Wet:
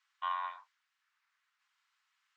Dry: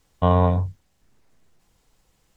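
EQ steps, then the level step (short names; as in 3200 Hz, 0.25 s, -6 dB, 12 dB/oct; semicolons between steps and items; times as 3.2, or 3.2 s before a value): steep high-pass 1200 Hz 36 dB/oct; LPF 1700 Hz 6 dB/oct; air absorption 59 m; 0.0 dB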